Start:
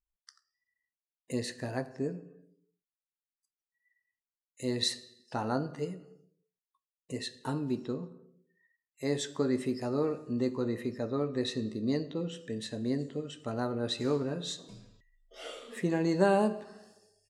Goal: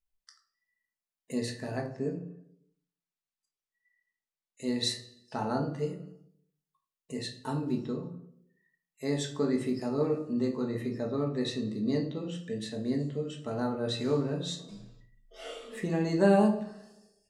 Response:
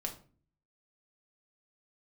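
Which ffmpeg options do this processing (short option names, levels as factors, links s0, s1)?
-filter_complex "[0:a]asettb=1/sr,asplit=3[s0][s1][s2];[s0]atrim=end=1.764[s3];[s1]atrim=start=1.76:end=4.66,asetpts=PTS-STARTPTS,afade=t=in:d=0.004:c=qsin,afade=t=out:st=2.896:d=0.004:c=qsin,lowpass=8800[s4];[s2]atrim=start=4.656[s5];[s3][s4]acrossfade=d=0.004:c1=hsin:c2=qsin[s6];[s6][s5]acrossfade=d=0.004:c1=qsin:c2=hsin[s7];[1:a]atrim=start_sample=2205[s8];[s7][s8]afir=irnorm=-1:irlink=0"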